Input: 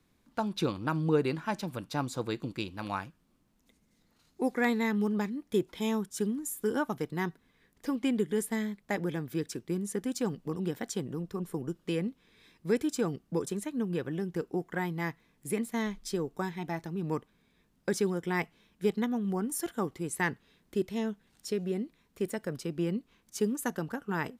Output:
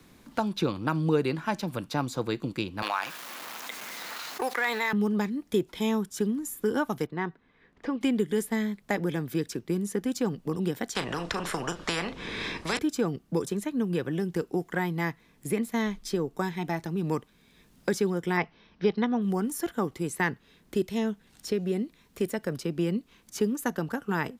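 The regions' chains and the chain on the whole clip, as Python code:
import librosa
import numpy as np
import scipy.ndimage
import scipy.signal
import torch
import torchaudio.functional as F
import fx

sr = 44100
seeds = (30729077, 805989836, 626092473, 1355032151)

y = fx.chain(x, sr, fx.law_mismatch(coded='A'),
    fx.highpass(hz=890.0, slope=12),
    fx.env_flatten(amount_pct=70), at=(2.82, 4.93))
y = fx.chain(y, sr, fx.bessel_lowpass(hz=1800.0, order=2),
    fx.low_shelf(hz=300.0, db=-7.5), at=(7.06, 8.01))
y = fx.chain(y, sr, fx.bessel_lowpass(hz=6700.0, order=4),
    fx.doubler(ms=35.0, db=-13.5),
    fx.spectral_comp(ratio=4.0), at=(10.95, 12.79))
y = fx.chain(y, sr, fx.steep_lowpass(hz=5900.0, slope=96),
    fx.peak_eq(hz=900.0, db=4.5, octaves=1.9), at=(18.37, 19.22))
y = fx.dynamic_eq(y, sr, hz=8800.0, q=1.9, threshold_db=-56.0, ratio=4.0, max_db=-5)
y = fx.band_squash(y, sr, depth_pct=40)
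y = F.gain(torch.from_numpy(y), 3.5).numpy()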